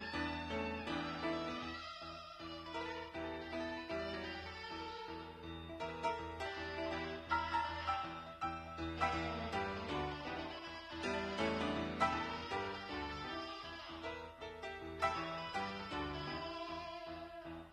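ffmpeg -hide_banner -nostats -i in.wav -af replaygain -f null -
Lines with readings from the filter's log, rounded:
track_gain = +22.6 dB
track_peak = 0.077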